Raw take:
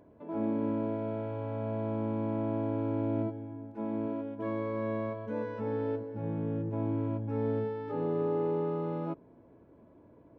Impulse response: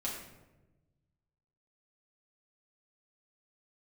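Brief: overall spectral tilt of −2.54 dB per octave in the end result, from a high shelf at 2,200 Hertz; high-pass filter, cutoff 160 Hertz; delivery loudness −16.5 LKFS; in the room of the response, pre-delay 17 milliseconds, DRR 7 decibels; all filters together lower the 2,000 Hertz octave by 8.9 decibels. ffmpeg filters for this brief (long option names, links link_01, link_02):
-filter_complex "[0:a]highpass=160,equalizer=frequency=2000:width_type=o:gain=-7.5,highshelf=frequency=2200:gain=-8,asplit=2[link_01][link_02];[1:a]atrim=start_sample=2205,adelay=17[link_03];[link_02][link_03]afir=irnorm=-1:irlink=0,volume=-9.5dB[link_04];[link_01][link_04]amix=inputs=2:normalize=0,volume=18.5dB"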